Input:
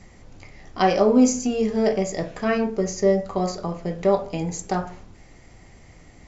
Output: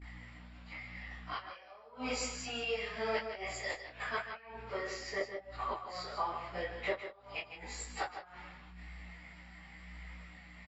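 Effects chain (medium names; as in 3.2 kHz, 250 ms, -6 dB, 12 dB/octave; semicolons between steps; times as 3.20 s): high-pass 1.4 kHz 12 dB/octave; gate with hold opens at -49 dBFS; boxcar filter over 7 samples; hum 60 Hz, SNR 19 dB; inverted gate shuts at -26 dBFS, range -27 dB; plain phase-vocoder stretch 1.7×; on a send: delay 155 ms -9 dB; on the sum: detune thickener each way 31 cents; trim +11.5 dB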